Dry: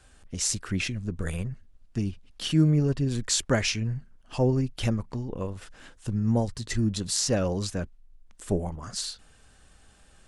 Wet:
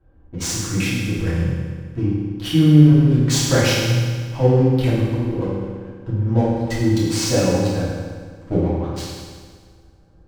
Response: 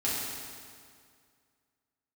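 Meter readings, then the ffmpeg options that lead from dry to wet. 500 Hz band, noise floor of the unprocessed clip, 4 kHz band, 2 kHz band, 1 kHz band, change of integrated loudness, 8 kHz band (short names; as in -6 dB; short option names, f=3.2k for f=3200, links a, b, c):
+9.5 dB, -57 dBFS, +6.0 dB, +8.5 dB, +9.5 dB, +9.5 dB, +3.5 dB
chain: -filter_complex "[0:a]adynamicsmooth=sensitivity=6.5:basefreq=510[a];[1:a]atrim=start_sample=2205,asetrate=52920,aresample=44100[b];[a][b]afir=irnorm=-1:irlink=0,volume=2dB"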